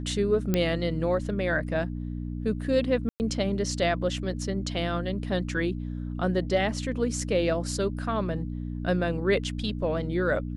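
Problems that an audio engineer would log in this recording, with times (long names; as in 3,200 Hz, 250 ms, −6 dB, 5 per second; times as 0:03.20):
mains hum 60 Hz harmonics 5 −33 dBFS
0:00.54: click −11 dBFS
0:03.09–0:03.20: drop-out 109 ms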